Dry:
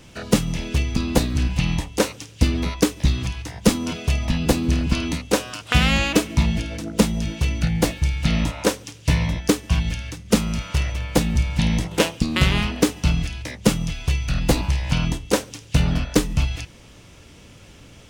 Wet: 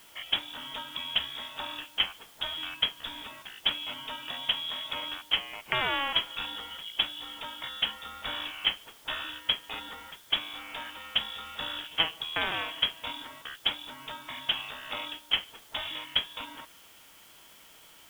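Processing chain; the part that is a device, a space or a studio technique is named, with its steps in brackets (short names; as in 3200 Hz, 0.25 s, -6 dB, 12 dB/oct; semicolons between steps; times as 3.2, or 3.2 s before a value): scrambled radio voice (BPF 380–2800 Hz; inverted band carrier 3600 Hz; white noise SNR 22 dB); gain -5 dB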